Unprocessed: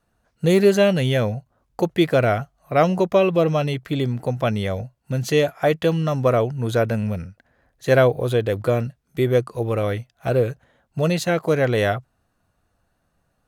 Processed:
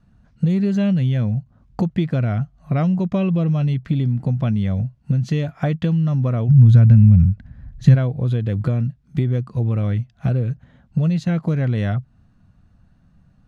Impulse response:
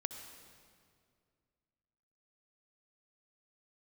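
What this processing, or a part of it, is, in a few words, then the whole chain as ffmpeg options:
jukebox: -filter_complex "[0:a]lowpass=5600,lowshelf=frequency=290:width_type=q:width=1.5:gain=12.5,acompressor=threshold=-21dB:ratio=5,asplit=3[link_01][link_02][link_03];[link_01]afade=type=out:start_time=6.48:duration=0.02[link_04];[link_02]asubboost=boost=5.5:cutoff=160,afade=type=in:start_time=6.48:duration=0.02,afade=type=out:start_time=7.94:duration=0.02[link_05];[link_03]afade=type=in:start_time=7.94:duration=0.02[link_06];[link_04][link_05][link_06]amix=inputs=3:normalize=0,volume=3dB"

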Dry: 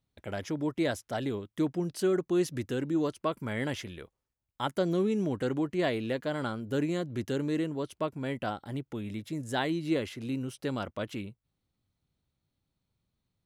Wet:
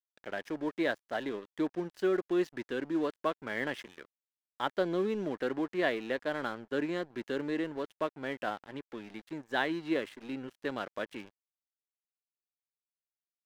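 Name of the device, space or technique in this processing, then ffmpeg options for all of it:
pocket radio on a weak battery: -af "highpass=280,lowpass=3900,aeval=exprs='sgn(val(0))*max(abs(val(0))-0.00376,0)':channel_layout=same,equalizer=frequency=1700:width_type=o:width=0.3:gain=6"

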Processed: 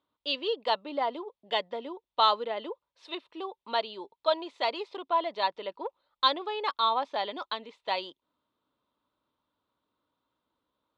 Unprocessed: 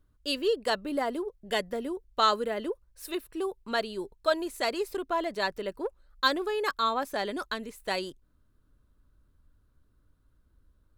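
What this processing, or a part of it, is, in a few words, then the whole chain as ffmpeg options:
phone earpiece: -af "highpass=390,equalizer=frequency=390:width_type=q:width=4:gain=-5,equalizer=frequency=920:width_type=q:width=4:gain=8,equalizer=frequency=1600:width_type=q:width=4:gain=-10,equalizer=frequency=3500:width_type=q:width=4:gain=7,lowpass=frequency=4200:width=0.5412,lowpass=frequency=4200:width=1.3066"

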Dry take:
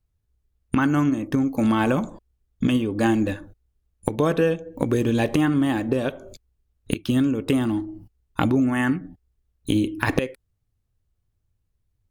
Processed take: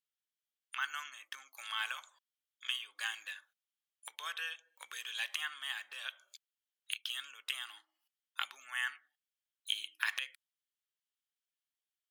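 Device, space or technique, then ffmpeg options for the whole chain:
headphones lying on a table: -af "highpass=frequency=1400:width=0.5412,highpass=frequency=1400:width=1.3066,equalizer=frequency=3200:width_type=o:width=0.29:gain=8.5,volume=-7dB"

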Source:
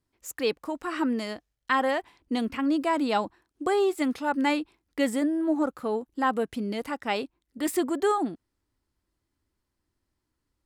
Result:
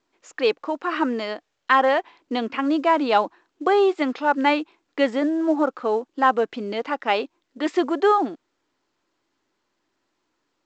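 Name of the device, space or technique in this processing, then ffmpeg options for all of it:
telephone: -af "highpass=360,lowpass=3500,equalizer=frequency=2000:width=3.8:gain=-2.5,volume=8dB" -ar 16000 -c:a pcm_mulaw

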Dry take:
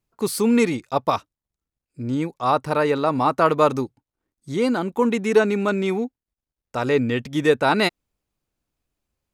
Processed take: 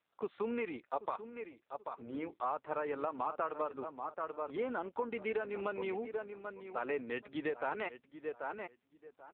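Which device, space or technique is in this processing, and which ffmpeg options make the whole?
voicemail: -filter_complex "[0:a]highpass=frequency=42:width=0.5412,highpass=frequency=42:width=1.3066,asettb=1/sr,asplit=3[link_01][link_02][link_03];[link_01]atrim=end=1.084[link_04];[link_02]atrim=start=1.08:end=2.34,asetpts=PTS-STARTPTS,afade=type=in:duration=0.004:curve=qsin,afade=type=out:start_time=1.256:duration=0.004:curve=qsin,bandreject=frequency=50:width_type=h:width=6,bandreject=frequency=100:width_type=h:width=6,bandreject=frequency=150:width_type=h:width=6,bandreject=frequency=200:width_type=h:width=6,bandreject=frequency=250:width_type=h:width=6,bandreject=frequency=300:width_type=h:width=6,bandreject=frequency=350:width_type=h:width=6,bandreject=frequency=400:width_type=h:width=6,bandreject=frequency=450:width_type=h:width=6[link_05];[link_03]atrim=start=2.336[link_06];[link_04][link_05]acrossfade=duration=0.004:curve1=hsin:curve2=qsin[link_07];[link_07][link_06]acrossfade=duration=0.004:curve1=qsin:curve2=hsin,asettb=1/sr,asplit=3[link_08][link_09][link_10];[link_08]atrim=end=5.154[link_11];[link_09]atrim=start=5.15:end=5.84,asetpts=PTS-STARTPTS,afade=type=in:duration=0.004:curve=qsin,afade=type=out:start_time=0.686:duration=0.004:curve=qsin,equalizer=frequency=3800:width=1.4:gain=3.5[link_12];[link_10]atrim=start=5.836[link_13];[link_11][link_12]acrossfade=duration=0.004:curve1=hsin:curve2=qsin[link_14];[link_14][link_13]acrossfade=duration=0.004:curve1=qsin:curve2=hsin,highpass=430,lowpass=2600,asplit=2[link_15][link_16];[link_16]adelay=785,lowpass=frequency=2500:poles=1,volume=-11.5dB,asplit=2[link_17][link_18];[link_18]adelay=785,lowpass=frequency=2500:poles=1,volume=0.19[link_19];[link_15][link_17][link_19]amix=inputs=3:normalize=0,acompressor=threshold=-24dB:ratio=8,volume=-7.5dB" -ar 8000 -c:a libopencore_amrnb -b:a 5900

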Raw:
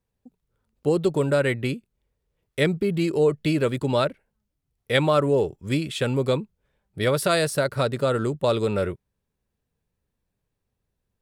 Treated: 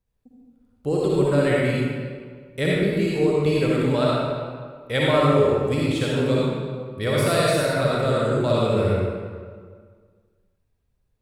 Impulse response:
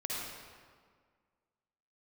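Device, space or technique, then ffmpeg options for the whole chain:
stairwell: -filter_complex "[1:a]atrim=start_sample=2205[link_01];[0:a][link_01]afir=irnorm=-1:irlink=0,lowshelf=frequency=71:gain=11.5,volume=-1.5dB"

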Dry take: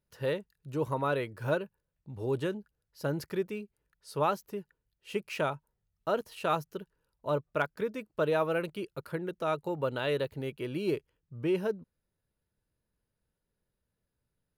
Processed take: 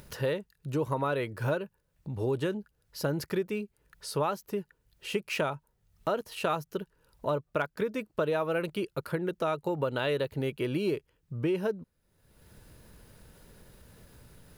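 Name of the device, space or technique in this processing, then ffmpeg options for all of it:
upward and downward compression: -af "acompressor=mode=upward:threshold=-41dB:ratio=2.5,acompressor=threshold=-33dB:ratio=4,volume=6.5dB"

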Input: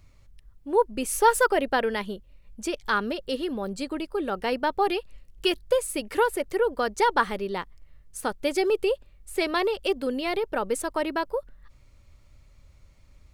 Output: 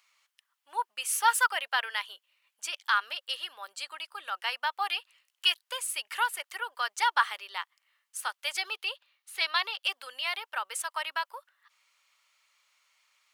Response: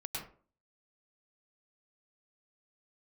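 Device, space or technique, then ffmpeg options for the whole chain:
headphones lying on a table: -filter_complex "[0:a]highpass=frequency=1000:width=0.5412,highpass=frequency=1000:width=1.3066,equalizer=frequency=3000:width_type=o:width=0.3:gain=5.5,asettb=1/sr,asplit=3[link_01][link_02][link_03];[link_01]atrim=end=8.584[link_04];[link_02]atrim=start=8.58:end=9.85,asetpts=PTS-STARTPTS,afade=type=in:duration=0.004:curve=qsin,afade=type=out:start_time=1.266:duration=0.004:curve=qsin,equalizer=frequency=4000:width_type=o:width=0.33:gain=5,equalizer=frequency=8000:width_type=o:width=0.33:gain=-10,equalizer=frequency=12500:width_type=o:width=0.33:gain=-5[link_05];[link_03]atrim=start=9.846[link_06];[link_04][link_05]acrossfade=duration=0.004:curve1=hsin:curve2=qsin[link_07];[link_07][link_06]acrossfade=duration=0.004:curve1=qsin:curve2=hsin"

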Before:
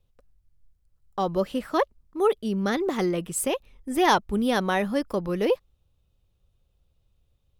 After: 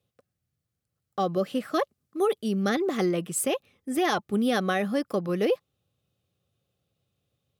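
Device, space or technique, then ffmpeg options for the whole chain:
PA system with an anti-feedback notch: -filter_complex "[0:a]highpass=frequency=110:width=0.5412,highpass=frequency=110:width=1.3066,asuperstop=centerf=940:order=8:qfactor=6,alimiter=limit=-16dB:level=0:latency=1:release=70,asettb=1/sr,asplit=3[link_01][link_02][link_03];[link_01]atrim=end=1.744[link_04];[link_02]atrim=start=1.74:end=2.69,asetpts=PTS-STARTPTS,afade=type=in:duration=0.004:curve=qsin,afade=type=out:start_time=0.946:duration=0.004:curve=qsin,equalizer=frequency=11000:width_type=o:width=2.1:gain=4.5[link_05];[link_03]atrim=start=2.686[link_06];[link_04][link_05]acrossfade=duration=0.004:curve1=hsin:curve2=qsin[link_07];[link_07][link_06]acrossfade=duration=0.004:curve1=qsin:curve2=hsin"

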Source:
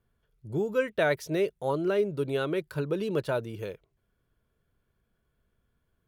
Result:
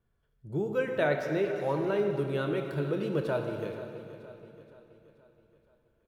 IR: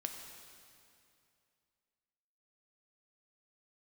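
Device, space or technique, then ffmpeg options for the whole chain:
swimming-pool hall: -filter_complex "[1:a]atrim=start_sample=2205[link_01];[0:a][link_01]afir=irnorm=-1:irlink=0,highshelf=frequency=3900:gain=-6.5,asettb=1/sr,asplit=3[link_02][link_03][link_04];[link_02]atrim=end=1.074[link_05];[link_03]atrim=start=1.07:end=1.56,asetpts=PTS-STARTPTS,afade=type=in:duration=0.004:curve=qsin,afade=type=out:start_time=0.486:duration=0.004:curve=qsin,equalizer=frequency=10000:width=0.59:gain=-7.5[link_06];[link_04]atrim=start=1.556[link_07];[link_05][link_06]acrossfade=duration=0.004:curve1=hsin:curve2=qsin[link_08];[link_08][link_07]acrossfade=duration=0.004:curve1=qsin:curve2=hsin,aecho=1:1:476|952|1428|1904|2380:0.178|0.0907|0.0463|0.0236|0.012"

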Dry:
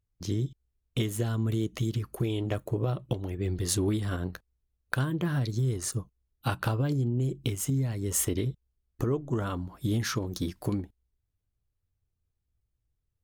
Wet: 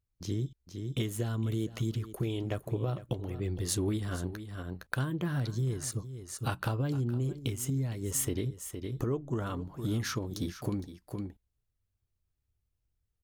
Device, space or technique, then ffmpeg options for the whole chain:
ducked delay: -filter_complex "[0:a]asplit=3[link_01][link_02][link_03];[link_02]adelay=462,volume=-2dB[link_04];[link_03]apad=whole_len=603975[link_05];[link_04][link_05]sidechaincompress=threshold=-40dB:ratio=12:attack=39:release=498[link_06];[link_01][link_06]amix=inputs=2:normalize=0,volume=-3.5dB"

